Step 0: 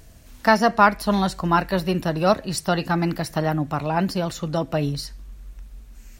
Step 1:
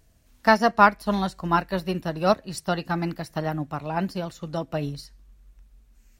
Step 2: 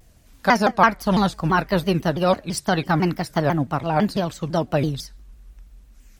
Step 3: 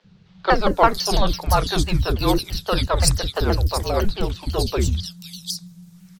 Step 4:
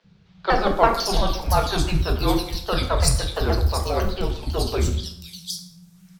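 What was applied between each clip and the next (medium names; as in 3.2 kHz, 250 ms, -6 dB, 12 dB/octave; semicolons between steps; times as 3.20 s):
upward expansion 1.5:1, over -37 dBFS
in parallel at -0.5 dB: compressor with a negative ratio -24 dBFS, ratio -0.5; on the sum: vibrato with a chosen wave saw down 6 Hz, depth 250 cents
resonant high shelf 3.2 kHz +7 dB, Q 1.5; frequency shift -220 Hz; three bands offset in time mids, lows, highs 40/500 ms, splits 380/3500 Hz; trim +2 dB
plate-style reverb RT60 0.73 s, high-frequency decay 0.7×, DRR 3 dB; trim -3 dB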